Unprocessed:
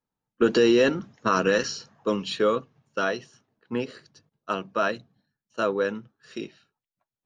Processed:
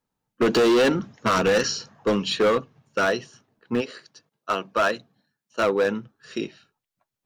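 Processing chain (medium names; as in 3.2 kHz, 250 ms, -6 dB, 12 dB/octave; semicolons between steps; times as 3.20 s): 3.80–5.84 s: high-pass 700 Hz -> 170 Hz 6 dB/octave; hard clipper -21 dBFS, distortion -8 dB; trim +5.5 dB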